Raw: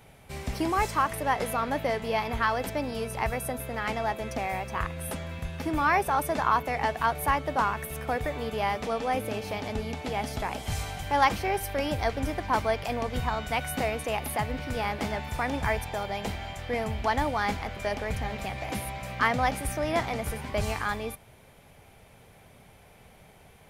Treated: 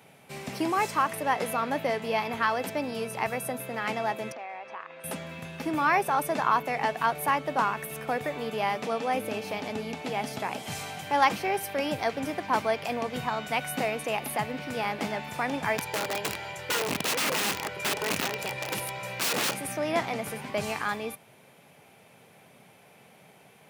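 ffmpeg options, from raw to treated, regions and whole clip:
ffmpeg -i in.wav -filter_complex "[0:a]asettb=1/sr,asplit=3[link_01][link_02][link_03];[link_01]atrim=end=4.324[link_04];[link_02]atrim=start=4.32:end=5.04,asetpts=PTS-STARTPTS,afade=type=in:duration=0.004:curve=qsin,afade=type=out:start_time=0.716:duration=0.004:curve=qsin,acompressor=threshold=-32dB:ratio=6:attack=3.2:release=140:knee=1:detection=peak,highpass=520,lowpass=5200,aemphasis=mode=reproduction:type=75kf[link_05];[link_03]atrim=start=5.036[link_06];[link_04][link_05]acrossfade=duration=0.004:curve1=hsin:curve2=qsin[link_07];[link_07][link_06]acrossfade=duration=0.004:curve1=qsin:curve2=hsin,asettb=1/sr,asplit=3[link_08][link_09][link_10];[link_08]atrim=end=15.784[link_11];[link_09]atrim=start=15.78:end=19.54,asetpts=PTS-STARTPTS,afade=type=in:duration=0.004:curve=qsin,afade=type=out:start_time=3.756:duration=0.004:curve=qsin,aecho=1:1:2.1:0.9,atrim=end_sample=165816,aeval=exprs='(mod(13.3*val(0)+1,2)-1)/13.3':channel_layout=same[link_12];[link_10]atrim=start=19.536[link_13];[link_11][link_12]acrossfade=duration=0.004:curve1=hsin:curve2=qsin[link_14];[link_14][link_13]acrossfade=duration=0.004:curve1=qsin:curve2=hsin,highpass=frequency=140:width=0.5412,highpass=frequency=140:width=1.3066,equalizer=frequency=2600:width_type=o:width=0.2:gain=3.5" out.wav

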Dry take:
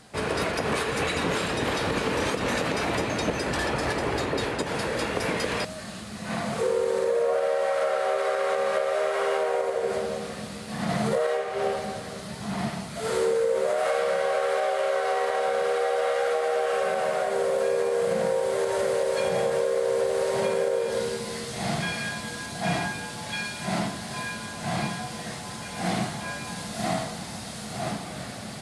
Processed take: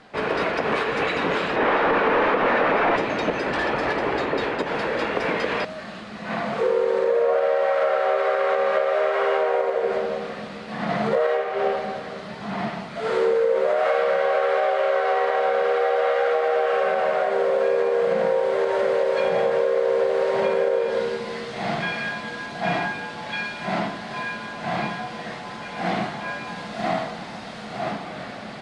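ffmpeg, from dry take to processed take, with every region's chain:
ffmpeg -i in.wav -filter_complex "[0:a]asettb=1/sr,asplit=3[link_01][link_02][link_03];[link_01]atrim=end=1.564[link_04];[link_02]atrim=start=1.56:end=2.96,asetpts=PTS-STARTPTS,afade=type=in:duration=0.004:curve=qsin,afade=type=out:start_time=1.396:duration=0.004:curve=qsin,asplit=2[link_05][link_06];[link_06]highpass=frequency=720:poles=1,volume=21dB,asoftclip=type=tanh:threshold=-14dB[link_07];[link_05][link_07]amix=inputs=2:normalize=0,lowpass=frequency=7900:poles=1,volume=-6dB,adynamicsmooth=sensitivity=0.5:basefreq=1100[link_08];[link_03]atrim=start=2.956[link_09];[link_04][link_08]acrossfade=duration=0.004:curve1=hsin:curve2=qsin[link_10];[link_10][link_09]acrossfade=duration=0.004:curve1=qsin:curve2=hsin,lowpass=2900,equalizer=frequency=84:width=0.75:gain=-14,volume=5dB" out.wav

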